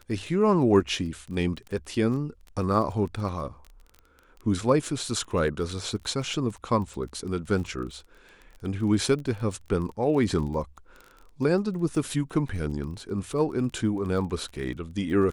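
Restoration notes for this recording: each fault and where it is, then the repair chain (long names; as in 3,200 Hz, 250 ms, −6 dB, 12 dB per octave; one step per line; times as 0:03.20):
surface crackle 22 per second −35 dBFS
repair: click removal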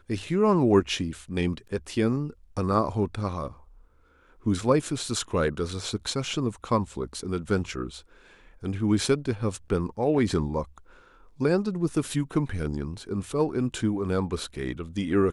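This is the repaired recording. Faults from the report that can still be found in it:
none of them is left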